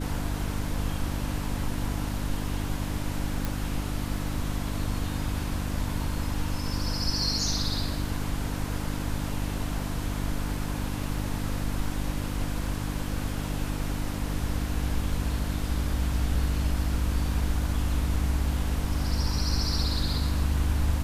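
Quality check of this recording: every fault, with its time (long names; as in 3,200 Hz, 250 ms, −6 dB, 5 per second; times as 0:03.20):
mains hum 50 Hz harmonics 6 −32 dBFS
0:03.45: click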